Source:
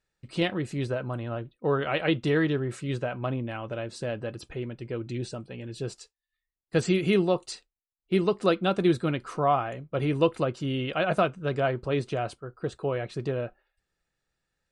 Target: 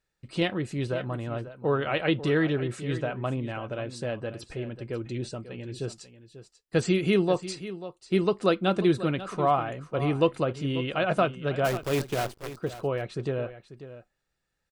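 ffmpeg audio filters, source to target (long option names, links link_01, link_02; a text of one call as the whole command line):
ffmpeg -i in.wav -filter_complex "[0:a]asplit=3[link_01][link_02][link_03];[link_01]afade=type=out:start_time=11.64:duration=0.02[link_04];[link_02]acrusher=bits=6:dc=4:mix=0:aa=0.000001,afade=type=in:start_time=11.64:duration=0.02,afade=type=out:start_time=12.52:duration=0.02[link_05];[link_03]afade=type=in:start_time=12.52:duration=0.02[link_06];[link_04][link_05][link_06]amix=inputs=3:normalize=0,aecho=1:1:541:0.2" out.wav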